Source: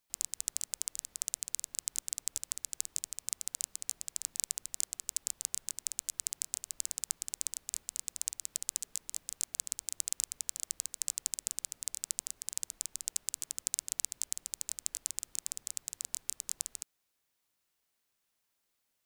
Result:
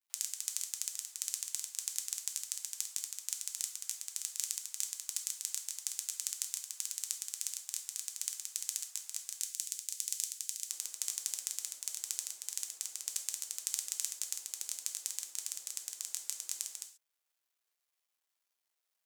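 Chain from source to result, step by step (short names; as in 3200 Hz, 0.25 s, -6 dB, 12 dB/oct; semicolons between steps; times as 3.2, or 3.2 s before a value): requantised 12-bit, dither none; Bessel high-pass 1100 Hz, order 4, from 9.41 s 2300 Hz, from 10.68 s 530 Hz; dynamic EQ 8600 Hz, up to -3 dB, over -52 dBFS, Q 1.3; non-linear reverb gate 0.16 s falling, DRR 4 dB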